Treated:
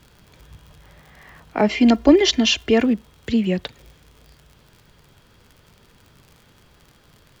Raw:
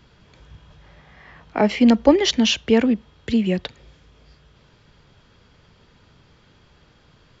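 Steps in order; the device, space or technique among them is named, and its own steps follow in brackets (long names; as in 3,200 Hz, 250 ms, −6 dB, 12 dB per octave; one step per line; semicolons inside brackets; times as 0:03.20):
vinyl LP (surface crackle 58 per second −37 dBFS; pink noise bed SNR 40 dB)
0:01.68–0:02.84: comb filter 2.9 ms, depth 68%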